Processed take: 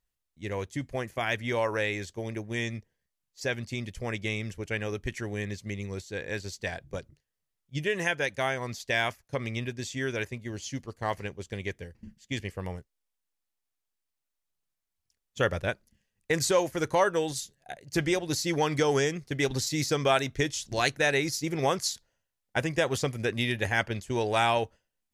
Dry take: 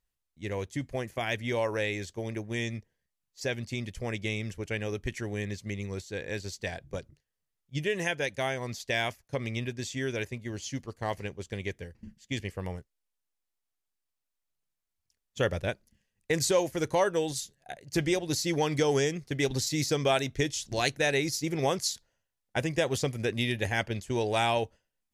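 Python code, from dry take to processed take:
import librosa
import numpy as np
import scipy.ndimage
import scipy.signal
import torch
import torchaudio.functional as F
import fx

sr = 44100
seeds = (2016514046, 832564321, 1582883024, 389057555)

y = fx.dynamic_eq(x, sr, hz=1300.0, q=1.3, threshold_db=-44.0, ratio=4.0, max_db=6)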